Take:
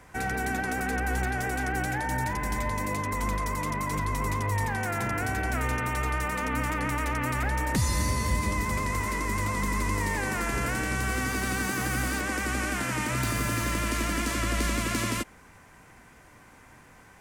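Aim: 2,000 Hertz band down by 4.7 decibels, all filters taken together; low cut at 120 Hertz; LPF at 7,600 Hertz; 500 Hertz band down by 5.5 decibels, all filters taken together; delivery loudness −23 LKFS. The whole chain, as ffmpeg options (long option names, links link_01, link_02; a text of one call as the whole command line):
ffmpeg -i in.wav -af "highpass=120,lowpass=7600,equalizer=frequency=500:width_type=o:gain=-7,equalizer=frequency=2000:width_type=o:gain=-5.5,volume=9.5dB" out.wav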